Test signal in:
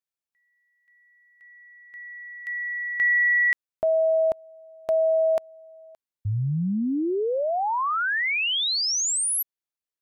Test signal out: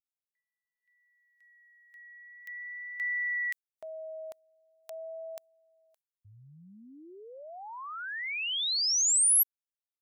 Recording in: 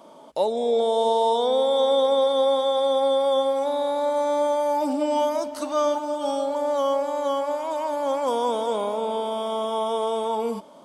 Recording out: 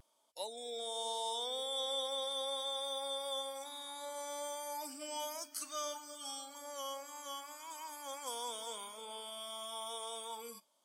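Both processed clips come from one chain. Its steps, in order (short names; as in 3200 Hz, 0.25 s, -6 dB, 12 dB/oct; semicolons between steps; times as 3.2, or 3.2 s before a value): pre-emphasis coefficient 0.97; spectral noise reduction 12 dB; vibrato 0.42 Hz 20 cents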